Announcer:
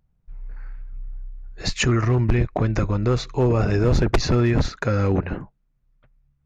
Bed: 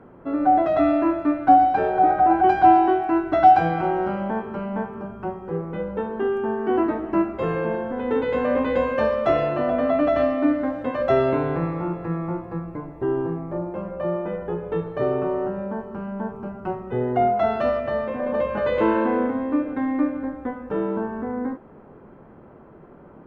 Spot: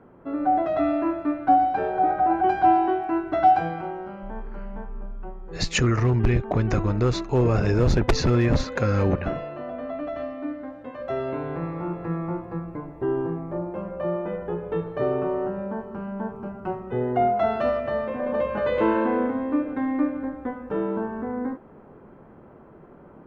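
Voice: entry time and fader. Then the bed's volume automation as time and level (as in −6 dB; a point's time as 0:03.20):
3.95 s, −1.5 dB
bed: 0:03.52 −4 dB
0:04.04 −11.5 dB
0:10.94 −11.5 dB
0:12.04 −1.5 dB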